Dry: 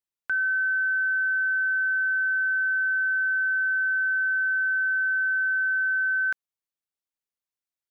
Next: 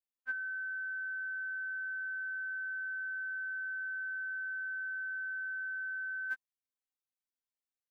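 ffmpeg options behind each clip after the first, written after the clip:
ffmpeg -i in.wav -af "afftfilt=real='re*3.46*eq(mod(b,12),0)':imag='im*3.46*eq(mod(b,12),0)':win_size=2048:overlap=0.75,volume=-6.5dB" out.wav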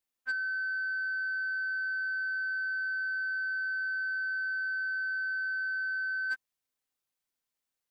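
ffmpeg -i in.wav -af "asoftclip=type=tanh:threshold=-34dB,volume=7dB" out.wav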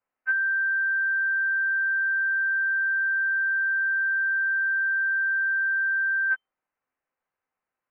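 ffmpeg -i in.wav -af "tiltshelf=frequency=920:gain=-9,lowpass=frequency=2600:width_type=q:width=0.5098,lowpass=frequency=2600:width_type=q:width=0.6013,lowpass=frequency=2600:width_type=q:width=0.9,lowpass=frequency=2600:width_type=q:width=2.563,afreqshift=-3100,volume=4.5dB" out.wav

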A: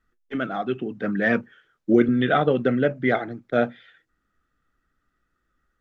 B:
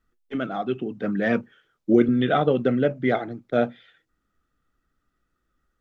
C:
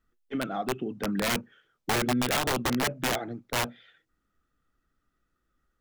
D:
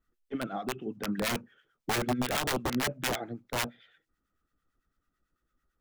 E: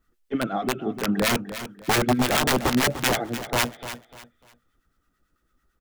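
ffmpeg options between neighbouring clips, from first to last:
ffmpeg -i in.wav -af "equalizer=frequency=1700:width_type=o:width=0.72:gain=-5.5" out.wav
ffmpeg -i in.wav -filter_complex "[0:a]asplit=2[link_01][link_02];[link_02]acompressor=threshold=-26dB:ratio=16,volume=-2.5dB[link_03];[link_01][link_03]amix=inputs=2:normalize=0,aeval=exprs='(mod(4.73*val(0)+1,2)-1)/4.73':channel_layout=same,volume=-7dB" out.wav
ffmpeg -i in.wav -filter_complex "[0:a]acrossover=split=1100[link_01][link_02];[link_01]aeval=exprs='val(0)*(1-0.7/2+0.7/2*cos(2*PI*9*n/s))':channel_layout=same[link_03];[link_02]aeval=exprs='val(0)*(1-0.7/2-0.7/2*cos(2*PI*9*n/s))':channel_layout=same[link_04];[link_03][link_04]amix=inputs=2:normalize=0" out.wav
ffmpeg -i in.wav -af "aecho=1:1:298|596|894:0.251|0.0728|0.0211,volume=8.5dB" out.wav

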